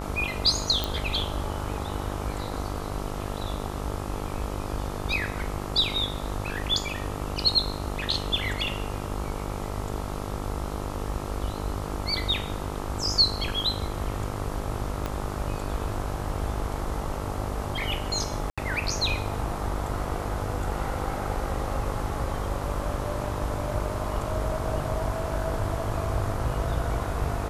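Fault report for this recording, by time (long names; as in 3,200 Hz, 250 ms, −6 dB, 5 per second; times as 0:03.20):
mains buzz 50 Hz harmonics 27 −34 dBFS
0:00.84: click
0:15.06: click −16 dBFS
0:18.50–0:18.58: drop-out 76 ms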